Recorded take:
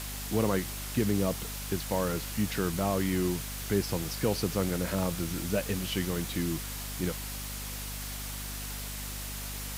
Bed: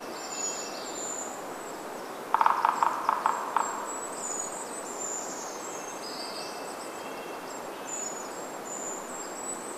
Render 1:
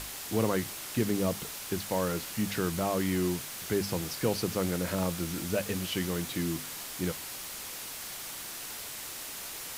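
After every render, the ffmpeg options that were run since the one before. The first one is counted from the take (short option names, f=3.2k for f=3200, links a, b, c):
-af "bandreject=f=50:t=h:w=6,bandreject=f=100:t=h:w=6,bandreject=f=150:t=h:w=6,bandreject=f=200:t=h:w=6,bandreject=f=250:t=h:w=6"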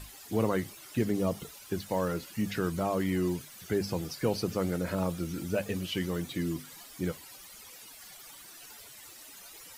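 -af "afftdn=nr=14:nf=-41"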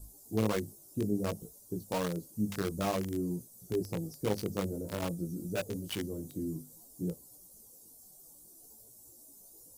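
-filter_complex "[0:a]flanger=delay=17:depth=3:speed=0.55,acrossover=split=640|6500[a][b][c];[b]acrusher=bits=5:mix=0:aa=0.000001[d];[a][d][c]amix=inputs=3:normalize=0"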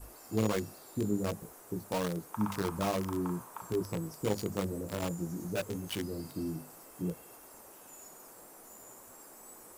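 -filter_complex "[1:a]volume=-18.5dB[a];[0:a][a]amix=inputs=2:normalize=0"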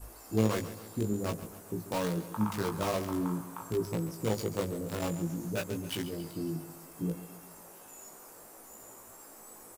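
-filter_complex "[0:a]asplit=2[a][b];[b]adelay=18,volume=-5dB[c];[a][c]amix=inputs=2:normalize=0,aecho=1:1:137|274|411|548|685:0.2|0.106|0.056|0.0297|0.0157"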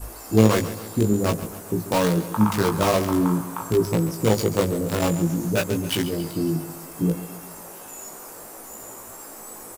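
-af "volume=11.5dB"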